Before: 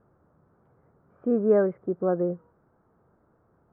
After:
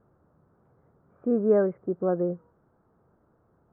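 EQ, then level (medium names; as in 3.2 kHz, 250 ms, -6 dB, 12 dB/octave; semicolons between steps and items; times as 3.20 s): distance through air 310 m; 0.0 dB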